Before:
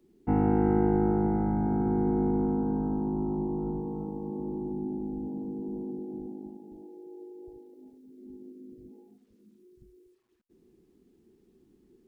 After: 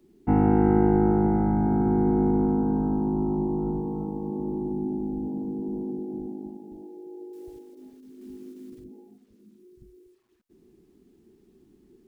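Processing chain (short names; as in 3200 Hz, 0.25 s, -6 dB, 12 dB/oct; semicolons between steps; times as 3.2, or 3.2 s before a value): 7.33–8.85 block floating point 5-bit; notch 490 Hz, Q 12; gain +4.5 dB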